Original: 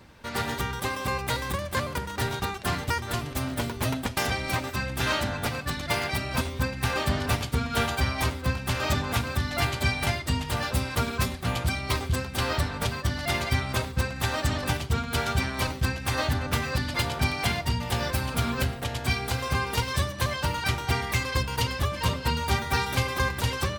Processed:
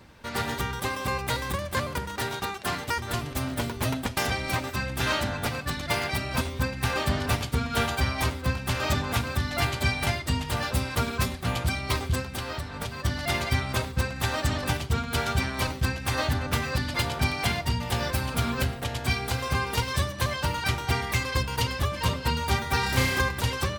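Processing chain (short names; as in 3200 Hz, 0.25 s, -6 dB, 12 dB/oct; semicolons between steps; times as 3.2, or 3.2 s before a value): 2.16–2.98 low shelf 140 Hz -11 dB; 12.2–13 compressor 6:1, threshold -30 dBFS, peak gain reduction 9.5 dB; 22.8–23.21 flutter echo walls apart 5.3 m, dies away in 0.87 s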